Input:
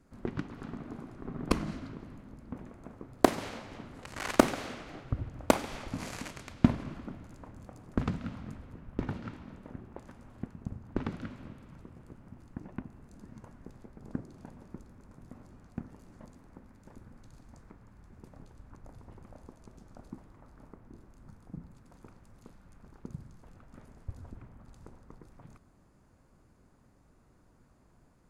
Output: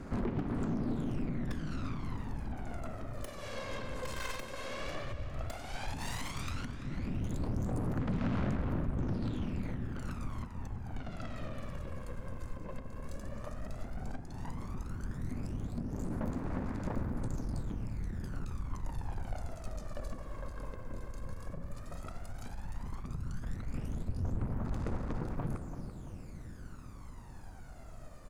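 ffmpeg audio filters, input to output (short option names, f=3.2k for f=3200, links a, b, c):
-filter_complex "[0:a]acompressor=threshold=-42dB:ratio=8,aeval=exprs='(tanh(316*val(0)+0.4)-tanh(0.4))/316':c=same,aphaser=in_gain=1:out_gain=1:delay=1.9:decay=0.65:speed=0.12:type=sinusoidal,asplit=2[a][b];[b]adelay=337,lowpass=f=4.2k:p=1,volume=-11dB,asplit=2[c][d];[d]adelay=337,lowpass=f=4.2k:p=1,volume=0.48,asplit=2[e][f];[f]adelay=337,lowpass=f=4.2k:p=1,volume=0.48,asplit=2[g][h];[h]adelay=337,lowpass=f=4.2k:p=1,volume=0.48,asplit=2[i][j];[j]adelay=337,lowpass=f=4.2k:p=1,volume=0.48[k];[c][e][g][i][k]amix=inputs=5:normalize=0[l];[a][l]amix=inputs=2:normalize=0,volume=12dB"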